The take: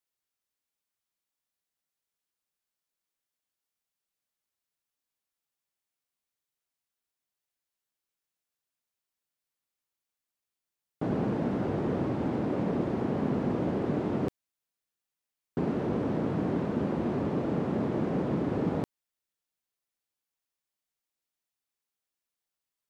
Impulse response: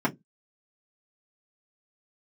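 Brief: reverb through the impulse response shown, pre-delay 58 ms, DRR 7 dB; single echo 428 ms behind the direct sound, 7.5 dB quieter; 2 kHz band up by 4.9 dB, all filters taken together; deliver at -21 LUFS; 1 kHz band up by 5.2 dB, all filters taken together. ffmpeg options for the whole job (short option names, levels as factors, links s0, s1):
-filter_complex "[0:a]equalizer=f=1000:t=o:g=6,equalizer=f=2000:t=o:g=4,aecho=1:1:428:0.422,asplit=2[s0][s1];[1:a]atrim=start_sample=2205,adelay=58[s2];[s1][s2]afir=irnorm=-1:irlink=0,volume=0.112[s3];[s0][s3]amix=inputs=2:normalize=0,volume=1.88"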